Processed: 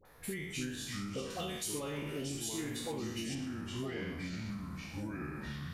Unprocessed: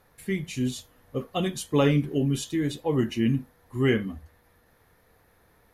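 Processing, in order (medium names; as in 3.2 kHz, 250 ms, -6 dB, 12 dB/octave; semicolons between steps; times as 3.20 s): spectral sustain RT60 0.62 s; peaking EQ 130 Hz -5.5 dB 2.6 oct; peak limiter -22 dBFS, peak gain reduction 11.5 dB; ever faster or slower copies 220 ms, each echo -4 st, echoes 3, each echo -6 dB; 1.25–3.30 s: treble shelf 6.1 kHz +10.5 dB; compression 4:1, threshold -39 dBFS, peak gain reduction 12.5 dB; phase dispersion highs, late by 52 ms, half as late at 1 kHz; trim +1 dB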